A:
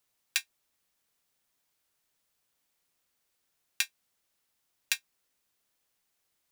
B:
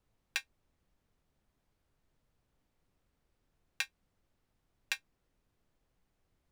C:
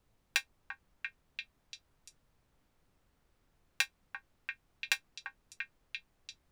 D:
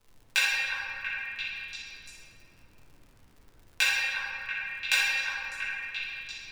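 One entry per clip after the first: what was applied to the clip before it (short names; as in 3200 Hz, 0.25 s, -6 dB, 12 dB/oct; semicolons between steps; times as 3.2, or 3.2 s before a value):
tilt -4.5 dB/oct; gain +2 dB
delay with a stepping band-pass 0.343 s, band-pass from 1100 Hz, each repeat 0.7 oct, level -3 dB; gain +4.5 dB
shoebox room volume 120 m³, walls hard, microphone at 1.5 m; crackle 110/s -47 dBFS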